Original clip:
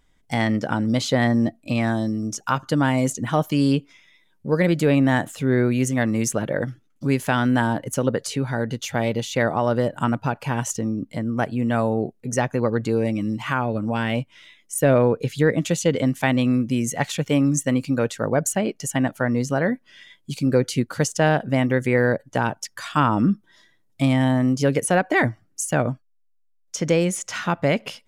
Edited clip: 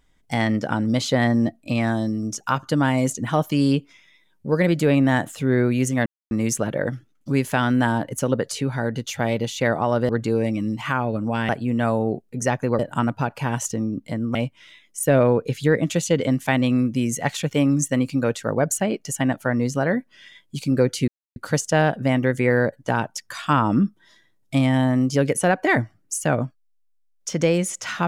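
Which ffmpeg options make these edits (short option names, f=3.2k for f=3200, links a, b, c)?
-filter_complex "[0:a]asplit=7[a][b][c][d][e][f][g];[a]atrim=end=6.06,asetpts=PTS-STARTPTS,afade=t=out:st=6.056:d=0.004:c=hsin,apad=pad_dur=0.25[h];[b]atrim=start=6.06:end=9.842,asetpts=PTS-STARTPTS,afade=t=in:d=0.004:c=hsin[i];[c]atrim=start=12.698:end=14.102[j];[d]atrim=start=11.398:end=12.702[k];[e]atrim=start=9.838:end=11.402[l];[f]atrim=start=14.098:end=20.83,asetpts=PTS-STARTPTS,afade=t=out:st=6.728:d=0.004:c=hsin,apad=pad_dur=0.28[m];[g]atrim=start=20.83,asetpts=PTS-STARTPTS,afade=t=in:d=0.004:c=hsin[n];[h][i]concat=n=2:v=0:a=1[o];[o][j]acrossfade=d=0.004:c1=hsin:c2=hsin[p];[p][k]acrossfade=d=0.004:c1=hsin:c2=hsin[q];[q][l]acrossfade=d=0.004:c1=hsin:c2=hsin[r];[m][n]concat=n=2:v=0:a=1[s];[r][s]acrossfade=d=0.004:c1=hsin:c2=hsin"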